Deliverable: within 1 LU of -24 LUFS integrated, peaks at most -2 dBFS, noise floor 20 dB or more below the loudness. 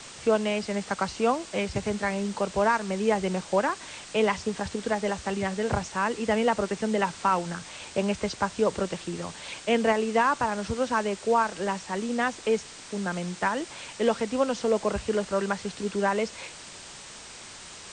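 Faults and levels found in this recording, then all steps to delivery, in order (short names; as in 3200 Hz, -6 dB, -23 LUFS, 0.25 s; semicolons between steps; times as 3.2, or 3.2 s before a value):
noise floor -45 dBFS; noise floor target -48 dBFS; loudness -27.5 LUFS; peak -11.0 dBFS; loudness target -24.0 LUFS
-> denoiser 6 dB, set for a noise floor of -45 dBFS; gain +3.5 dB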